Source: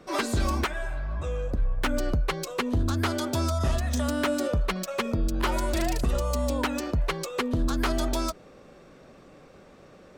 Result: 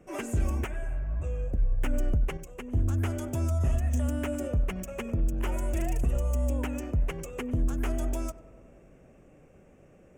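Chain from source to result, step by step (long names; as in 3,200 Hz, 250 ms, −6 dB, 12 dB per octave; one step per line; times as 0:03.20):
drawn EQ curve 110 Hz 0 dB, 190 Hz −4 dB, 730 Hz −7 dB, 1,100 Hz −14 dB, 1,900 Hz −9 dB, 2,800 Hz −7 dB, 4,100 Hz −29 dB, 6,600 Hz −6 dB
on a send: feedback echo with a low-pass in the loop 96 ms, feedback 77%, low-pass 1,900 Hz, level −17 dB
0:02.37–0:02.83: on the sum: expander for the loud parts 1.5 to 1, over −36 dBFS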